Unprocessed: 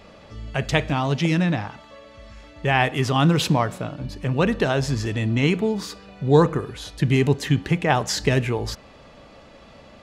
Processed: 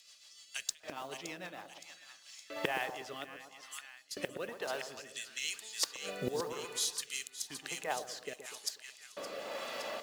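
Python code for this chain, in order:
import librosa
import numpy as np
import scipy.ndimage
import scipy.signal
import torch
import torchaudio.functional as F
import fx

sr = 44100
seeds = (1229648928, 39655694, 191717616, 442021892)

y = scipy.signal.sosfilt(scipy.signal.butter(4, 63.0, 'highpass', fs=sr, output='sos'), x)
y = fx.notch(y, sr, hz=2300.0, q=28.0)
y = fx.filter_lfo_highpass(y, sr, shape='square', hz=0.6, low_hz=550.0, high_hz=6600.0, q=0.94)
y = fx.gate_flip(y, sr, shuts_db=-27.0, range_db=-25)
y = fx.stiff_resonator(y, sr, f0_hz=92.0, decay_s=0.62, stiffness=0.008, at=(3.24, 4.11))
y = fx.echo_split(y, sr, split_hz=1300.0, low_ms=122, high_ms=567, feedback_pct=52, wet_db=-8.5)
y = fx.mod_noise(y, sr, seeds[0], snr_db=20)
y = fx.rotary_switch(y, sr, hz=6.7, then_hz=1.0, switch_at_s=1.78)
y = fx.band_squash(y, sr, depth_pct=40, at=(4.97, 5.54))
y = F.gain(torch.from_numpy(y), 10.0).numpy()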